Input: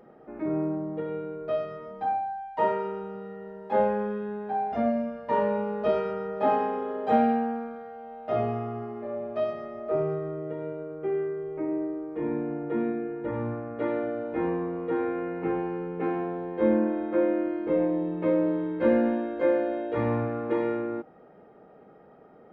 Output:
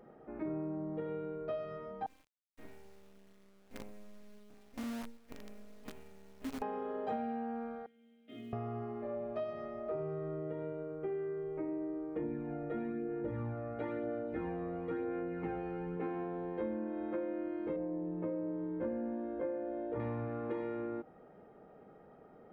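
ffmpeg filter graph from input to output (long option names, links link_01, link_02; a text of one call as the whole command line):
ffmpeg -i in.wav -filter_complex "[0:a]asettb=1/sr,asplit=3[link_01][link_02][link_03];[link_01]atrim=end=2.064[link_04];[link_02]atrim=start=2.06:end=6.62,asetpts=PTS-STARTPTS,afade=type=in:duration=0.004:curve=qsin,afade=type=out:start_time=4.556:duration=0.004:curve=qsin,asplit=3[link_05][link_06][link_07];[link_05]bandpass=frequency=270:width_type=q:width=8,volume=0dB[link_08];[link_06]bandpass=frequency=2290:width_type=q:width=8,volume=-6dB[link_09];[link_07]bandpass=frequency=3010:width_type=q:width=8,volume=-9dB[link_10];[link_08][link_09][link_10]amix=inputs=3:normalize=0,equalizer=frequency=3400:width_type=o:width=0.29:gain=-12,acrusher=bits=7:dc=4:mix=0:aa=0.000001[link_11];[link_03]atrim=start=6.616[link_12];[link_04][link_11]acrossfade=duration=0.004:curve1=hsin:curve2=qsin[link_13];[link_13][link_12]acrossfade=duration=0.004:curve1=qsin:curve2=hsin,asettb=1/sr,asplit=3[link_14][link_15][link_16];[link_14]atrim=end=7.864[link_17];[link_15]atrim=start=7.86:end=8.53,asetpts=PTS-STARTPTS,afade=type=in:duration=0.004:curve=qsin,afade=type=out:start_time=0.666:duration=0.004:curve=qsin,asplit=3[link_18][link_19][link_20];[link_18]bandpass=frequency=270:width_type=q:width=8,volume=0dB[link_21];[link_19]bandpass=frequency=2290:width_type=q:width=8,volume=-6dB[link_22];[link_20]bandpass=frequency=3010:width_type=q:width=8,volume=-9dB[link_23];[link_21][link_22][link_23]amix=inputs=3:normalize=0,acrusher=bits=8:mode=log:mix=0:aa=0.000001,equalizer=frequency=3400:width=2.8:gain=12[link_24];[link_16]atrim=start=8.526[link_25];[link_17][link_24]acrossfade=duration=0.004:curve1=hsin:curve2=qsin[link_26];[link_26][link_25]acrossfade=duration=0.004:curve1=qsin:curve2=hsin,asettb=1/sr,asplit=3[link_27][link_28][link_29];[link_27]atrim=end=12.164[link_30];[link_28]atrim=start=12.16:end=15.97,asetpts=PTS-STARTPTS,afade=type=in:duration=0.004:curve=qsin,afade=type=out:start_time=3.806:duration=0.004:curve=qsin,bandreject=frequency=1000:width=5.9,aphaser=in_gain=1:out_gain=1:delay=1.6:decay=0.43:speed=1:type=sinusoidal[link_31];[link_29]atrim=start=15.966[link_32];[link_30][link_31]acrossfade=duration=0.004:curve1=hsin:curve2=qsin[link_33];[link_33][link_32]acrossfade=duration=0.004:curve1=qsin:curve2=hsin,asettb=1/sr,asplit=3[link_34][link_35][link_36];[link_34]atrim=end=17.764[link_37];[link_35]atrim=start=17.76:end=20,asetpts=PTS-STARTPTS,afade=type=in:duration=0.004:curve=qsin,afade=type=out:start_time=2.236:duration=0.004:curve=qsin,lowpass=frequency=1000:poles=1,aemphasis=mode=reproduction:type=50fm[link_38];[link_36]atrim=start=19.996[link_39];[link_37][link_38]acrossfade=duration=0.004:curve1=hsin:curve2=qsin[link_40];[link_40][link_39]acrossfade=duration=0.004:curve1=qsin:curve2=hsin,lowshelf=frequency=87:gain=8,acompressor=threshold=-30dB:ratio=6,volume=-5dB" out.wav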